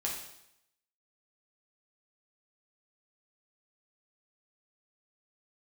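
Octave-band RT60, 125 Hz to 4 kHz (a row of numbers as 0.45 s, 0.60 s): 0.80 s, 0.80 s, 0.80 s, 0.80 s, 0.80 s, 0.80 s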